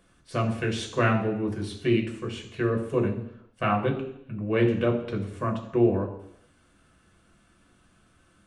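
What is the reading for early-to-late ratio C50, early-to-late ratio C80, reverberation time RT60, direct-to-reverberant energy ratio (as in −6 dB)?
8.5 dB, 11.5 dB, 0.75 s, 0.5 dB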